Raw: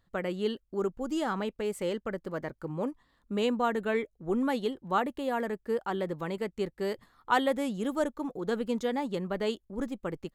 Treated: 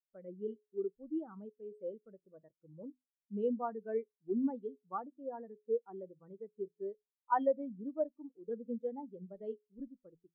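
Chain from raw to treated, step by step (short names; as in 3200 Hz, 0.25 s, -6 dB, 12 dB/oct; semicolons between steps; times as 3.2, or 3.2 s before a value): de-hum 84.46 Hz, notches 5; on a send at -21 dB: reverb, pre-delay 44 ms; on the sum: spectral expander 2.5:1; gain -5.5 dB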